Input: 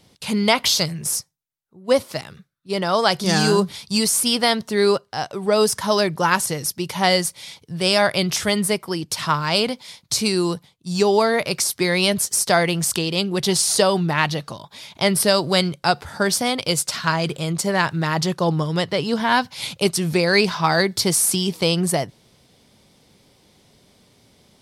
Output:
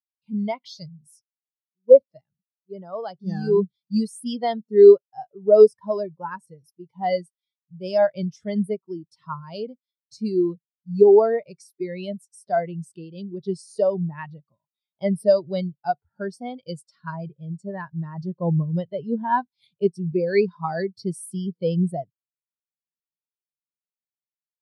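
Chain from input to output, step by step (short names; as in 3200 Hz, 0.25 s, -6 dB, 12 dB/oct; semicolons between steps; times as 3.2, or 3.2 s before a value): AGC gain up to 5 dB; spectral expander 2.5:1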